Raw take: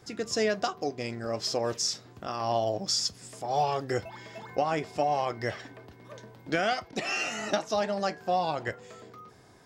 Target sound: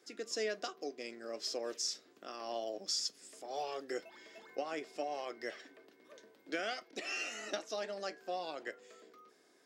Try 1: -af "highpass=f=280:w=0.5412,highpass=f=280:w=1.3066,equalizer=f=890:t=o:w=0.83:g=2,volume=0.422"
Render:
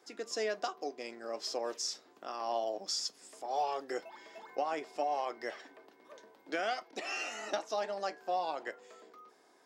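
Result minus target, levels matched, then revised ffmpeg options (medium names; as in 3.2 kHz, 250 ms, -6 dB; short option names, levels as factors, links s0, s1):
1 kHz band +5.0 dB
-af "highpass=f=280:w=0.5412,highpass=f=280:w=1.3066,equalizer=f=890:t=o:w=0.83:g=-9.5,volume=0.422"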